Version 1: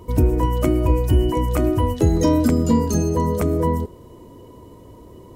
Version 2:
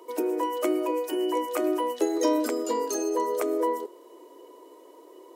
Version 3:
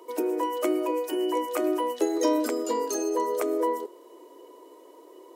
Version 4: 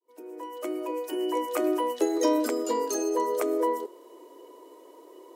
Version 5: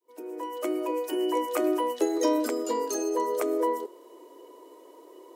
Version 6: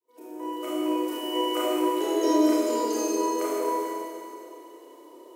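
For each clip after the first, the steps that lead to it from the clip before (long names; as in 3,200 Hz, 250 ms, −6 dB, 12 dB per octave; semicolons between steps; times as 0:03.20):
Butterworth high-pass 320 Hz 48 dB per octave; level −3 dB
no processing that can be heard
fade in at the beginning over 1.56 s
speech leveller within 4 dB 2 s
four-comb reverb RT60 2.6 s, combs from 26 ms, DRR −9 dB; level −7.5 dB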